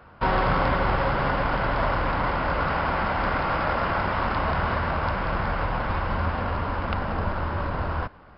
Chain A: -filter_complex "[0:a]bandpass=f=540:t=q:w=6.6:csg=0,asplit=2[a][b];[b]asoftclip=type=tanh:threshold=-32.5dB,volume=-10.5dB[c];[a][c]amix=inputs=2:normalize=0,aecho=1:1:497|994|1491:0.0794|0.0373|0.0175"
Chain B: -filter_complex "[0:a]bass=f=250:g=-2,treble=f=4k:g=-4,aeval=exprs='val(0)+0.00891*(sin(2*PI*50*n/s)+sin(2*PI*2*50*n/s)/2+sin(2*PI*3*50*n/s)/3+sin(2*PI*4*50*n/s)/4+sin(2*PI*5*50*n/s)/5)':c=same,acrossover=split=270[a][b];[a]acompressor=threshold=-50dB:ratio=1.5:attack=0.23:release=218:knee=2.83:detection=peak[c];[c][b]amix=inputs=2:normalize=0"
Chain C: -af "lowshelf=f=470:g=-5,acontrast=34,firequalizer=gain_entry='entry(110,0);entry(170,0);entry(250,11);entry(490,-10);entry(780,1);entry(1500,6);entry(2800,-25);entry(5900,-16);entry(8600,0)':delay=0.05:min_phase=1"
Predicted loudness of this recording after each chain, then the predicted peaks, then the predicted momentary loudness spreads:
-35.0, -26.5, -19.5 LUFS; -21.0, -12.0, -4.5 dBFS; 7, 6, 5 LU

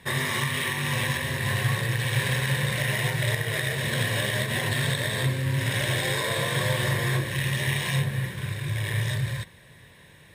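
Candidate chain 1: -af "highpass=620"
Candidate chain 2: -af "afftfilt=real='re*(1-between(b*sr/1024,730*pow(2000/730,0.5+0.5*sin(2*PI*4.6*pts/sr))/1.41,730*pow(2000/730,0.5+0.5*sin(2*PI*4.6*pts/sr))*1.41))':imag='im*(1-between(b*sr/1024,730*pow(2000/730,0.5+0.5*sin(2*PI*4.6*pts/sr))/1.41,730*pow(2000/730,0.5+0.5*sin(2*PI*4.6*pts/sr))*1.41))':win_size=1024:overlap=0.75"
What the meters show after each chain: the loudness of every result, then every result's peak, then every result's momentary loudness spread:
-28.5, -27.0 LUFS; -14.0, -13.0 dBFS; 8, 3 LU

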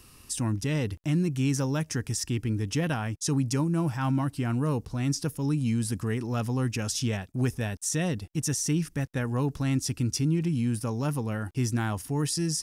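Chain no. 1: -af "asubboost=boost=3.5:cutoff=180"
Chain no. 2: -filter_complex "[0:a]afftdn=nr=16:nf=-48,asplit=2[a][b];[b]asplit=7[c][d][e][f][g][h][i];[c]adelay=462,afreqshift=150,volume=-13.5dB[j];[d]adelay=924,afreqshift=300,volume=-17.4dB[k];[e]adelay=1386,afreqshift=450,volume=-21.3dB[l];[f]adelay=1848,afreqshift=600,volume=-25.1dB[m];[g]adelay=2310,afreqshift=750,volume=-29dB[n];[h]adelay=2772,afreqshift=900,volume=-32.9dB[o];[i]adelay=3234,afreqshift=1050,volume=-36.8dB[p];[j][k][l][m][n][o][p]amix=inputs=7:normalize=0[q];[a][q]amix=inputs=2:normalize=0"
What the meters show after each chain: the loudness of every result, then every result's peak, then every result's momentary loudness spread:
-24.0, -28.5 LUFS; -10.5, -16.5 dBFS; 5, 3 LU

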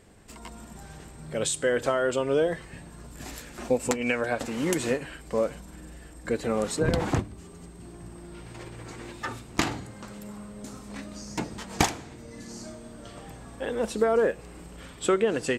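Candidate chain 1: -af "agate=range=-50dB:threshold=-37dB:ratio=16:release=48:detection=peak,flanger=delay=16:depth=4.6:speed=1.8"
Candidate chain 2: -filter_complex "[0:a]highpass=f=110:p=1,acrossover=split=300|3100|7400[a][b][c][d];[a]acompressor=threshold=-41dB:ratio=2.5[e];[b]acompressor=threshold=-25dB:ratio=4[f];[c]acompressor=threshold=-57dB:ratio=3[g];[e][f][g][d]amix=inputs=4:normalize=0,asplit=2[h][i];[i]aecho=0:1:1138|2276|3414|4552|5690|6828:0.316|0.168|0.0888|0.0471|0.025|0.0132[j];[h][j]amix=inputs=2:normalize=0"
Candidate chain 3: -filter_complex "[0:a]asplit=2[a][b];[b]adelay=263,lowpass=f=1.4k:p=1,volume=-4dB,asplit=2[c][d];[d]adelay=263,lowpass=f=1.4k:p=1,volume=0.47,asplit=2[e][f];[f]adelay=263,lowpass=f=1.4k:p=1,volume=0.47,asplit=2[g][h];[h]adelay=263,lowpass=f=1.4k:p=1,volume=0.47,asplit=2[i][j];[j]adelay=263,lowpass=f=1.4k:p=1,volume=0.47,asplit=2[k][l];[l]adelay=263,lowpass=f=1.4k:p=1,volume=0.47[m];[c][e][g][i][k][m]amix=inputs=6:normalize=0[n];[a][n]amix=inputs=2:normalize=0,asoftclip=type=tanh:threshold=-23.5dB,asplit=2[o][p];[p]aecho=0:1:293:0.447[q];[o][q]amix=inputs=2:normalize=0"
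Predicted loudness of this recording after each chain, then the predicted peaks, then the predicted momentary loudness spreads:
-31.0, -33.0, -31.5 LUFS; -13.0, -10.5, -20.5 dBFS; 14, 15, 14 LU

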